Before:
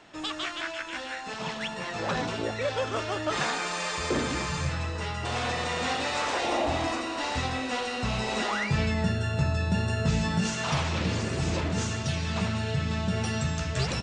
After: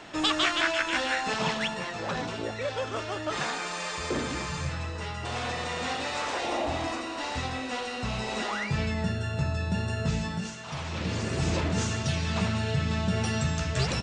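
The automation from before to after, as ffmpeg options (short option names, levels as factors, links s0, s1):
-af "volume=11.2,afade=t=out:st=1.21:d=0.77:silence=0.298538,afade=t=out:st=10.1:d=0.54:silence=0.334965,afade=t=in:st=10.64:d=0.8:silence=0.223872"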